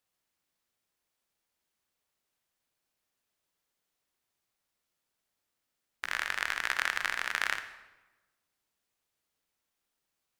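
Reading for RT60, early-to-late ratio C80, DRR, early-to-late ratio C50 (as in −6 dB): 1.1 s, 12.0 dB, 9.5 dB, 10.0 dB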